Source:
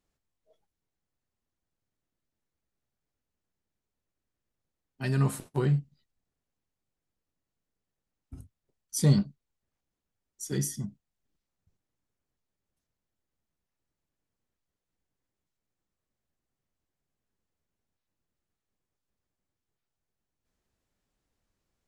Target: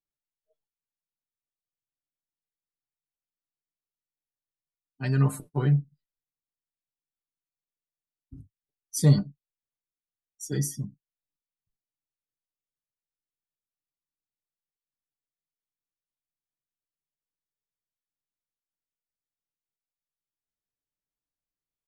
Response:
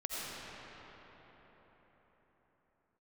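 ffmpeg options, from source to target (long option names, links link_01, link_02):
-af "aecho=1:1:6.8:0.5,afftdn=noise_reduction=20:noise_floor=-46"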